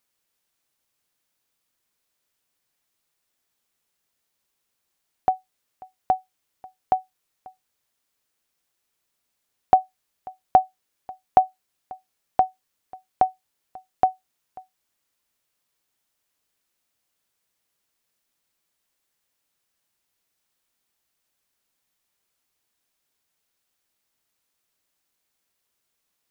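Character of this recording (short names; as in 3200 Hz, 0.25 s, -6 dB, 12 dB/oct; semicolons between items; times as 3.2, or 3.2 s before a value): noise floor -78 dBFS; spectral tilt -1.0 dB/oct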